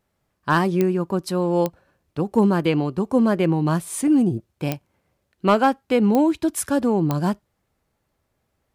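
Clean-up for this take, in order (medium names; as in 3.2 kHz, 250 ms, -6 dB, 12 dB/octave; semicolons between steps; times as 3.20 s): clip repair -8.5 dBFS; de-click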